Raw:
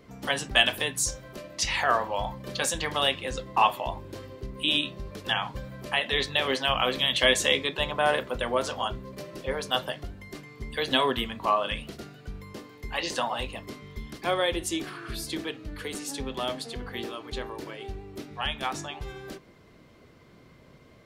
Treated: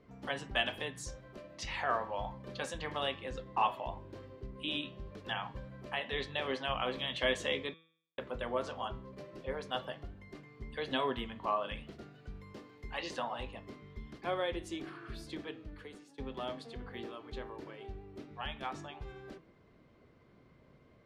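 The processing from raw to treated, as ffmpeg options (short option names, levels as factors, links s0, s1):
-filter_complex "[0:a]asettb=1/sr,asplit=3[s0][s1][s2];[s0]atrim=end=12.154[s3];[s1]atrim=start=12.15:end=13.16,asetpts=PTS-STARTPTS,afade=t=in:d=0.004:c=qsin,afade=t=out:st=1.006:d=0.004:c=qsin,highshelf=f=2500:g=4.5[s4];[s2]atrim=start=13.156[s5];[s3][s4]acrossfade=d=0.004:c1=hsin:c2=qsin[s6];[s6][s5]acrossfade=d=0.004:c1=qsin:c2=hsin,asplit=4[s7][s8][s9][s10];[s7]atrim=end=7.74,asetpts=PTS-STARTPTS,afade=t=out:st=7.736:d=0.004:c=hsin[s11];[s8]atrim=start=7.74:end=8.18,asetpts=PTS-STARTPTS,volume=0[s12];[s9]atrim=start=8.18:end=16.18,asetpts=PTS-STARTPTS,afade=t=in:d=0.004:c=hsin,afade=t=out:st=7.4:d=0.6:silence=0.105925[s13];[s10]atrim=start=16.18,asetpts=PTS-STARTPTS,afade=t=in:d=0.004:c=hsin:silence=0.105925[s14];[s11][s12][s13][s14]concat=n=4:v=0:a=1,aemphasis=mode=reproduction:type=75fm,bandreject=f=163.1:t=h:w=4,bandreject=f=326.2:t=h:w=4,bandreject=f=489.3:t=h:w=4,bandreject=f=652.4:t=h:w=4,bandreject=f=815.5:t=h:w=4,bandreject=f=978.6:t=h:w=4,bandreject=f=1141.7:t=h:w=4,bandreject=f=1304.8:t=h:w=4,bandreject=f=1467.9:t=h:w=4,bandreject=f=1631:t=h:w=4,bandreject=f=1794.1:t=h:w=4,bandreject=f=1957.2:t=h:w=4,bandreject=f=2120.3:t=h:w=4,bandreject=f=2283.4:t=h:w=4,bandreject=f=2446.5:t=h:w=4,bandreject=f=2609.6:t=h:w=4,bandreject=f=2772.7:t=h:w=4,bandreject=f=2935.8:t=h:w=4,bandreject=f=3098.9:t=h:w=4,bandreject=f=3262:t=h:w=4,bandreject=f=3425.1:t=h:w=4,bandreject=f=3588.2:t=h:w=4,bandreject=f=3751.3:t=h:w=4,volume=0.376"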